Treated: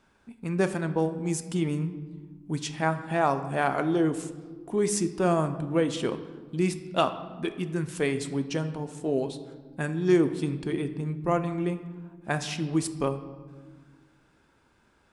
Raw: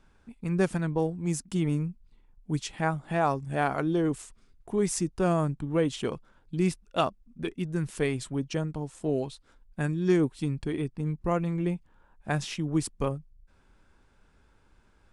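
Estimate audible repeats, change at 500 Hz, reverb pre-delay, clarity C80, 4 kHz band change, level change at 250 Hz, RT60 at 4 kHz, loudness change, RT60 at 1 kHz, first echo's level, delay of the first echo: no echo audible, +2.5 dB, 3 ms, 13.5 dB, +2.5 dB, +1.0 dB, 0.90 s, +1.5 dB, 1.5 s, no echo audible, no echo audible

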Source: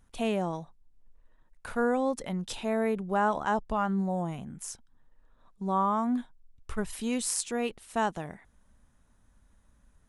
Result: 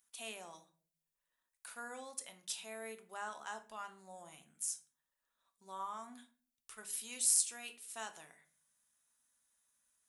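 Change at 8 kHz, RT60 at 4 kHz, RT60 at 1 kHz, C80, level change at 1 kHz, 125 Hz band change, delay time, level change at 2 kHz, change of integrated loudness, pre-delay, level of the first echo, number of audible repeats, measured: +1.5 dB, 0.30 s, 0.35 s, 19.0 dB, −17.0 dB, below −30 dB, no echo audible, −11.0 dB, −8.5 dB, 3 ms, no echo audible, no echo audible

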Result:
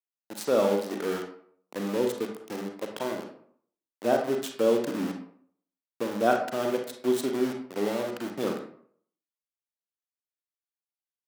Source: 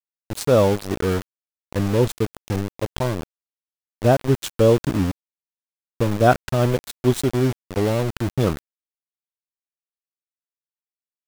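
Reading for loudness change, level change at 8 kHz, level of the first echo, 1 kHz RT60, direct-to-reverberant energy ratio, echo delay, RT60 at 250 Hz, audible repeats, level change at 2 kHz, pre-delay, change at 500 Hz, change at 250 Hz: −7.5 dB, −7.0 dB, no echo audible, 0.60 s, 3.0 dB, no echo audible, 0.60 s, no echo audible, −6.0 dB, 33 ms, −6.0 dB, −7.0 dB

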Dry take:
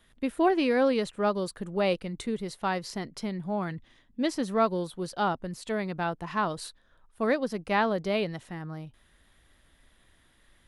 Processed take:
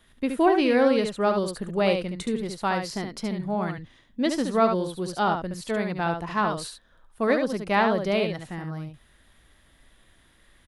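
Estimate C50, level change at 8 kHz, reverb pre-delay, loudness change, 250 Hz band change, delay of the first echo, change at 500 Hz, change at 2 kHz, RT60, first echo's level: no reverb audible, +4.0 dB, no reverb audible, +4.0 dB, +4.0 dB, 71 ms, +4.0 dB, +4.0 dB, no reverb audible, −6.0 dB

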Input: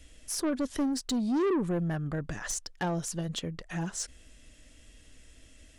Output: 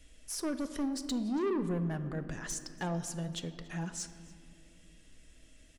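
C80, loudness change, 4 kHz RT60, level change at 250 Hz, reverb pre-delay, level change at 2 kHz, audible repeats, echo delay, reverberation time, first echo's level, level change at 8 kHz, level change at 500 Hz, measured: 12.0 dB, −4.0 dB, 1.2 s, −4.0 dB, 4 ms, −4.5 dB, 1, 284 ms, 2.5 s, −22.5 dB, −4.5 dB, −4.5 dB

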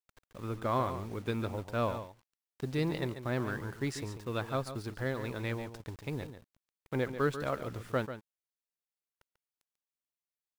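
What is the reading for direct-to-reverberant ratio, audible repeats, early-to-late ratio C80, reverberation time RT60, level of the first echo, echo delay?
no reverb audible, 1, no reverb audible, no reverb audible, −10.5 dB, 142 ms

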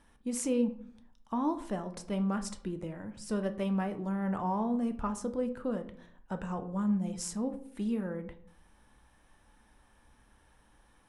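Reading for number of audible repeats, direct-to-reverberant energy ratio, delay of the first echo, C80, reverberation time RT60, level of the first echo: no echo audible, 7.5 dB, no echo audible, 17.0 dB, 0.60 s, no echo audible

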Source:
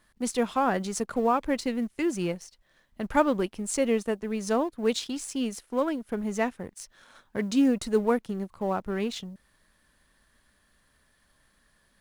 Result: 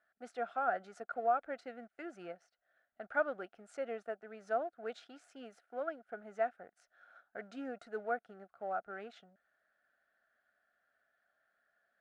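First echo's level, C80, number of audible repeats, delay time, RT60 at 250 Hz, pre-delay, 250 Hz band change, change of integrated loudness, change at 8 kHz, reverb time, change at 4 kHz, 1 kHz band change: no echo audible, no reverb audible, no echo audible, no echo audible, no reverb audible, no reverb audible, −23.0 dB, −11.5 dB, below −30 dB, no reverb audible, −22.5 dB, −7.5 dB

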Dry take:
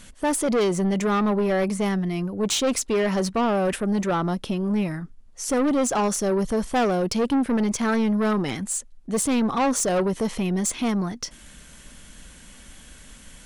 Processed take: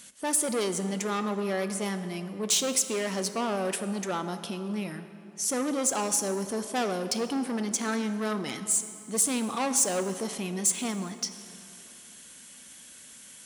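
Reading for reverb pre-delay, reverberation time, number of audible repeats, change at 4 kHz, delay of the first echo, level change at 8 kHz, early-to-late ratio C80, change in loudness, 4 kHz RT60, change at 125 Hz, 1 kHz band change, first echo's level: 6 ms, 2.8 s, no echo audible, −1.5 dB, no echo audible, +2.0 dB, 11.0 dB, −5.0 dB, 1.9 s, −10.0 dB, −7.0 dB, no echo audible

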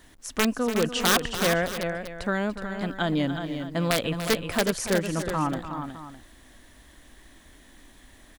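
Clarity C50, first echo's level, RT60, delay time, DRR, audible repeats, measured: no reverb audible, −12.0 dB, no reverb audible, 290 ms, no reverb audible, 3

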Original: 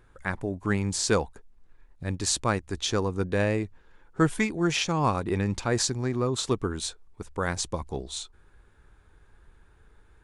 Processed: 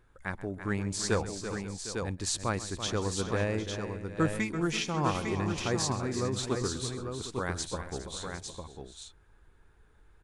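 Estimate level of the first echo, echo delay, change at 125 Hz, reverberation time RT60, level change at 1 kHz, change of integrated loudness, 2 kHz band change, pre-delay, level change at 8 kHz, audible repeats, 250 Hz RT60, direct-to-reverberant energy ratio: −17.0 dB, 132 ms, −3.5 dB, no reverb audible, −4.0 dB, −4.5 dB, −4.0 dB, no reverb audible, −4.0 dB, 6, no reverb audible, no reverb audible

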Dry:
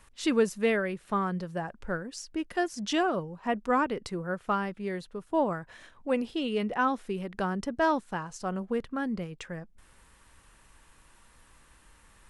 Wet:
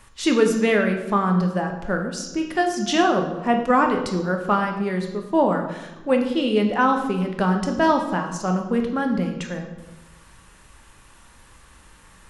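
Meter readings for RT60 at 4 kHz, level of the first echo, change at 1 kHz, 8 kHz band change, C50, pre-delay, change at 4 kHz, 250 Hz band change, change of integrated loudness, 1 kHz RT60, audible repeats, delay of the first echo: 0.75 s, no echo audible, +9.0 dB, +9.0 dB, 7.0 dB, 3 ms, +9.0 dB, +10.0 dB, +9.0 dB, 0.95 s, no echo audible, no echo audible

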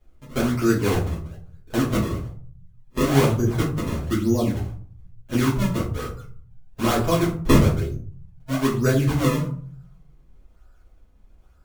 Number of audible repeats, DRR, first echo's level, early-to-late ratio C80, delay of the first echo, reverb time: no echo audible, −8.0 dB, no echo audible, 12.5 dB, no echo audible, 0.50 s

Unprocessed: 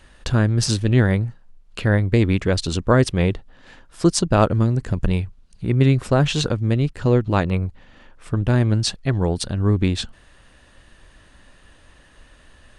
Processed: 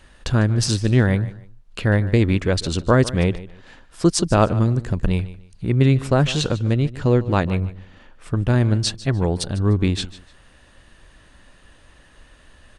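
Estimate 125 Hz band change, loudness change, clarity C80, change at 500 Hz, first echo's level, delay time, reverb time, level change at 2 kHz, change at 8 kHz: 0.0 dB, 0.0 dB, no reverb audible, 0.0 dB, −17.0 dB, 149 ms, no reverb audible, 0.0 dB, 0.0 dB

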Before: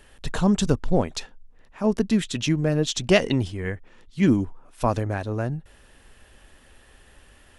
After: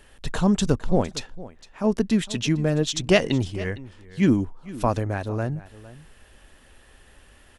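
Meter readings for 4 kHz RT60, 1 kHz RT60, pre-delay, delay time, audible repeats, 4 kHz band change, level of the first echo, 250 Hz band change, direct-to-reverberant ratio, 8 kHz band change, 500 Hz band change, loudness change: no reverb audible, no reverb audible, no reverb audible, 458 ms, 1, 0.0 dB, −18.0 dB, 0.0 dB, no reverb audible, 0.0 dB, 0.0 dB, 0.0 dB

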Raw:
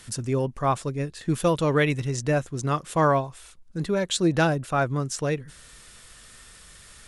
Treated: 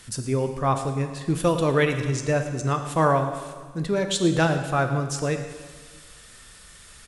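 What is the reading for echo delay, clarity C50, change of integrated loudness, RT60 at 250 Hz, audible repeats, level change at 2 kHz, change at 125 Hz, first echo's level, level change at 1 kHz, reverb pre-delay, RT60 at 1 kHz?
110 ms, 7.5 dB, +1.0 dB, 1.6 s, 1, +1.0 dB, +1.5 dB, −16.5 dB, +1.0 dB, 10 ms, 1.6 s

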